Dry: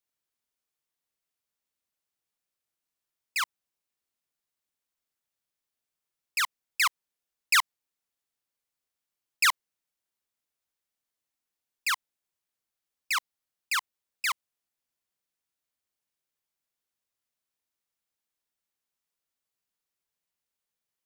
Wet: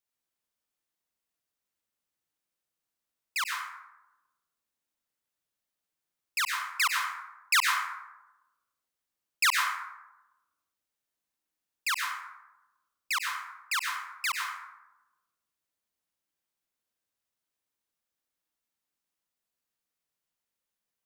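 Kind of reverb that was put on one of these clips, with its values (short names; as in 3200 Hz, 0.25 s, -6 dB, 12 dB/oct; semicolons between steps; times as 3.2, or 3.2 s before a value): plate-style reverb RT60 1 s, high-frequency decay 0.45×, pre-delay 85 ms, DRR 1 dB; gain -2 dB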